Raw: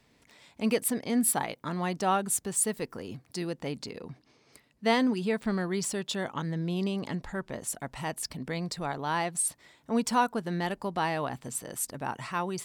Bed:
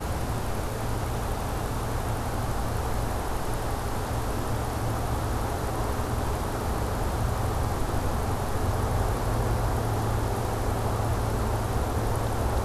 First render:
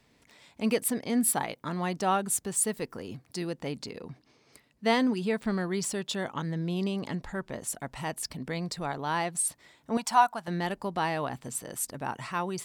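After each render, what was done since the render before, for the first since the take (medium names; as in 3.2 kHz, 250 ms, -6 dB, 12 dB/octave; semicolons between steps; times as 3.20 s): 9.97–10.48 s: resonant low shelf 570 Hz -9 dB, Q 3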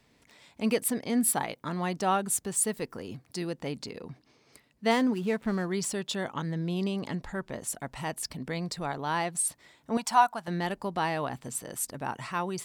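4.91–5.72 s: median filter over 9 samples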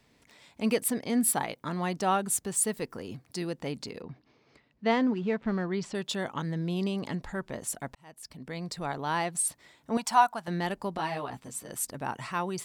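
4.02–5.95 s: distance through air 160 m; 7.95–8.92 s: fade in; 10.97–11.71 s: three-phase chorus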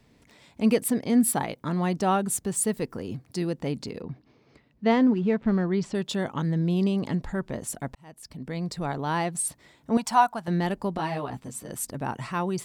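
bass shelf 480 Hz +8 dB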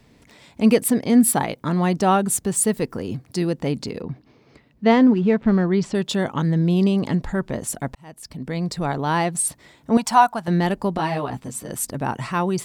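trim +6 dB; peak limiter -3 dBFS, peak gain reduction 1 dB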